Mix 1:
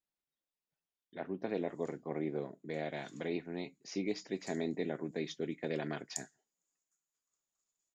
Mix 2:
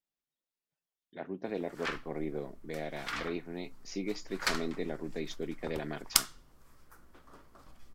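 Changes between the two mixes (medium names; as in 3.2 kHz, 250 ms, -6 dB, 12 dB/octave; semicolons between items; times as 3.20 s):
background: remove band-pass filter 6.9 kHz, Q 18; master: add treble shelf 7.4 kHz +4 dB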